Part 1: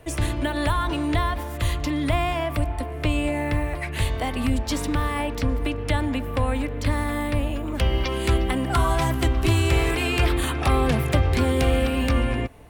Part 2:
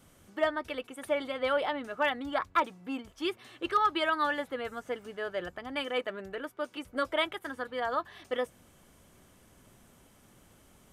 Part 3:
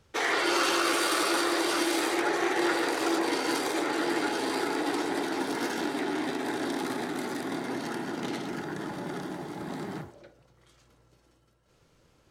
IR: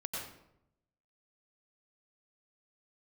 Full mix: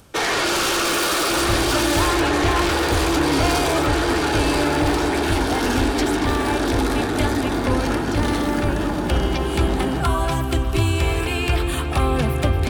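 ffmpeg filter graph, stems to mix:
-filter_complex "[0:a]adelay=1300,volume=0.5dB,asplit=2[link_01][link_02];[link_02]volume=-11.5dB[link_03];[1:a]acompressor=mode=upward:threshold=-36dB:ratio=2.5,volume=-7dB[link_04];[2:a]aeval=exprs='0.211*sin(PI/2*3.55*val(0)/0.211)':channel_layout=same,volume=-3.5dB[link_05];[link_03]aecho=0:1:232|464|696|928|1160|1392|1624|1856:1|0.56|0.314|0.176|0.0983|0.0551|0.0308|0.0173[link_06];[link_01][link_04][link_05][link_06]amix=inputs=4:normalize=0,bandreject=frequency=2000:width=11"

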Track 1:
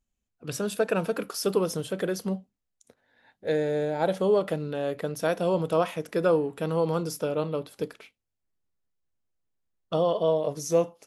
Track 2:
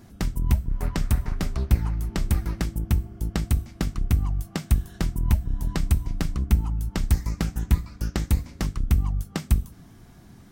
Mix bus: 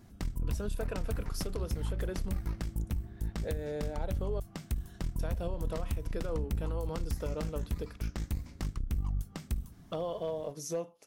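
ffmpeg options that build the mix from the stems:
ffmpeg -i stem1.wav -i stem2.wav -filter_complex "[0:a]acompressor=threshold=-39dB:ratio=2,volume=25.5dB,asoftclip=hard,volume=-25.5dB,volume=-1.5dB,asplit=3[link_01][link_02][link_03];[link_01]atrim=end=4.4,asetpts=PTS-STARTPTS,afade=type=out:start_time=4.396:duration=0.004:curve=hsin[link_04];[link_02]atrim=start=4.4:end=5.19,asetpts=PTS-STARTPTS,volume=0[link_05];[link_03]atrim=start=5.19,asetpts=PTS-STARTPTS,afade=type=in:duration=0.004:curve=hsin[link_06];[link_04][link_05][link_06]concat=n=3:v=0:a=1[link_07];[1:a]lowshelf=frequency=93:gain=3.5,aeval=exprs='0.562*(cos(1*acos(clip(val(0)/0.562,-1,1)))-cos(1*PI/2))+0.0501*(cos(6*acos(clip(val(0)/0.562,-1,1)))-cos(6*PI/2))':channel_layout=same,volume=-8dB[link_08];[link_07][link_08]amix=inputs=2:normalize=0,alimiter=limit=-24dB:level=0:latency=1:release=107" out.wav

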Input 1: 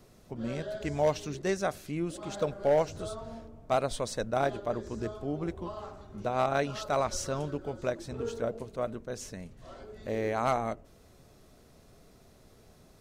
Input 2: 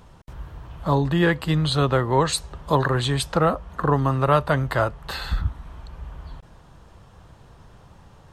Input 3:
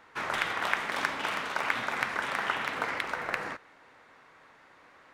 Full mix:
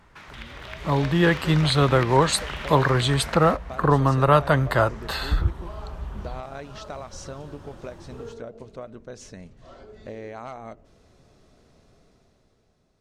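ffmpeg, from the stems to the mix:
ffmpeg -i stem1.wav -i stem2.wav -i stem3.wav -filter_complex "[0:a]lowpass=6800,acompressor=threshold=-35dB:ratio=6,volume=-10.5dB[link_01];[1:a]volume=-9dB[link_02];[2:a]acrossover=split=4300[link_03][link_04];[link_04]acompressor=threshold=-54dB:ratio=4:attack=1:release=60[link_05];[link_03][link_05]amix=inputs=2:normalize=0,equalizer=frequency=9000:width=1.5:gain=-2.5,acrossover=split=180|3000[link_06][link_07][link_08];[link_07]acompressor=threshold=-43dB:ratio=6[link_09];[link_06][link_09][link_08]amix=inputs=3:normalize=0,volume=-3.5dB[link_10];[link_01][link_02][link_10]amix=inputs=3:normalize=0,dynaudnorm=framelen=150:gausssize=13:maxgain=11.5dB" out.wav

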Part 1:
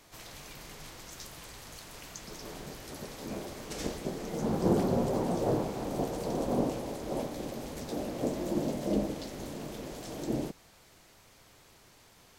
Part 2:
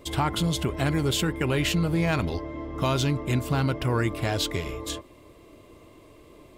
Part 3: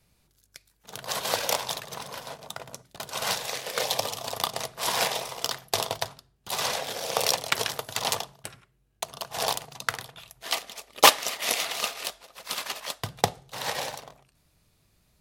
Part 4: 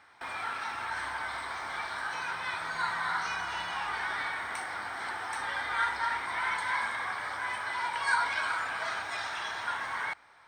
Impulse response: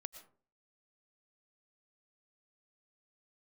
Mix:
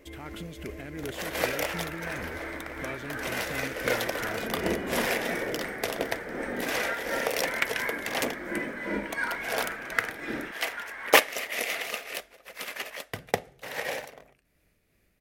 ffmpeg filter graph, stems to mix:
-filter_complex "[0:a]volume=-5dB[link_01];[1:a]equalizer=frequency=62:width_type=o:width=0.77:gain=5.5,alimiter=limit=-19.5dB:level=0:latency=1,volume=-9dB[link_02];[2:a]adelay=100,volume=-0.5dB[link_03];[3:a]adelay=1100,volume=-3.5dB[link_04];[link_01][link_02][link_03][link_04]amix=inputs=4:normalize=0,tremolo=f=2.8:d=0.33,equalizer=frequency=125:width_type=o:width=1:gain=-7,equalizer=frequency=250:width_type=o:width=1:gain=3,equalizer=frequency=500:width_type=o:width=1:gain=5,equalizer=frequency=1000:width_type=o:width=1:gain=-8,equalizer=frequency=2000:width_type=o:width=1:gain=9,equalizer=frequency=4000:width_type=o:width=1:gain=-8,equalizer=frequency=8000:width_type=o:width=1:gain=-5"

